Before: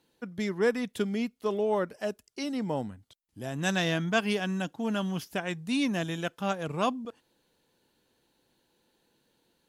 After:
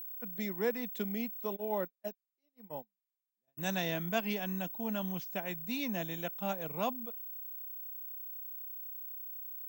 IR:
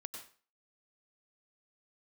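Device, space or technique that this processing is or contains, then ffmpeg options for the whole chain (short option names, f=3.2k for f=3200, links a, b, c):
old television with a line whistle: -filter_complex "[0:a]highpass=f=170:w=0.5412,highpass=f=170:w=1.3066,equalizer=f=280:t=q:w=4:g=-7,equalizer=f=410:t=q:w=4:g=-5,equalizer=f=1.2k:t=q:w=4:g=-7,equalizer=f=1.6k:t=q:w=4:g=-5,equalizer=f=3.1k:t=q:w=4:g=-5,equalizer=f=4.9k:t=q:w=4:g=-6,lowpass=f=7.1k:w=0.5412,lowpass=f=7.1k:w=1.3066,aeval=exprs='val(0)+0.0141*sin(2*PI*15734*n/s)':c=same,asplit=3[a][b][c];[a]afade=t=out:st=1.55:d=0.02[d];[b]agate=range=-47dB:threshold=-30dB:ratio=16:detection=peak,afade=t=in:st=1.55:d=0.02,afade=t=out:st=3.57:d=0.02[e];[c]afade=t=in:st=3.57:d=0.02[f];[d][e][f]amix=inputs=3:normalize=0,volume=-4dB"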